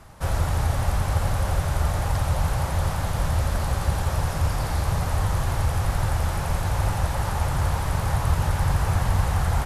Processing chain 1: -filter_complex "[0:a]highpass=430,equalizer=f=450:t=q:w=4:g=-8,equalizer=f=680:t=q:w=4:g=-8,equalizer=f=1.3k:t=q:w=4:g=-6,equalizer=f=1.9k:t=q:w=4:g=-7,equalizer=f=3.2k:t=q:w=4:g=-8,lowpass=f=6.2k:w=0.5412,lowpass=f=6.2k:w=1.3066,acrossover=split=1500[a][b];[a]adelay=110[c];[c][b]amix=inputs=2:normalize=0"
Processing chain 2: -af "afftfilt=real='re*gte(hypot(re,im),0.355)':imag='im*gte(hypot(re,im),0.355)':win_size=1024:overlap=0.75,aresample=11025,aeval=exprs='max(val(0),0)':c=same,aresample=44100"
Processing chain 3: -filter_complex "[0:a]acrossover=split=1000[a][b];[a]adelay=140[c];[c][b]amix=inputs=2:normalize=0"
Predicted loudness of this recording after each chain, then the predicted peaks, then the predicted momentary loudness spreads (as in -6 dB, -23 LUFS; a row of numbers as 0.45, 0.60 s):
-37.5, -31.5, -25.5 LUFS; -24.5, -11.5, -10.0 dBFS; 1, 4, 3 LU